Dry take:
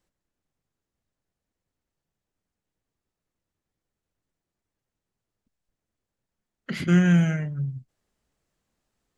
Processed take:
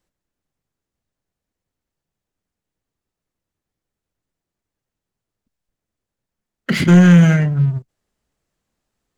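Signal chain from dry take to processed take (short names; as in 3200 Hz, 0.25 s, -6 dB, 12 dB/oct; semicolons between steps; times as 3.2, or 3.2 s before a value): sample leveller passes 2; gain +5.5 dB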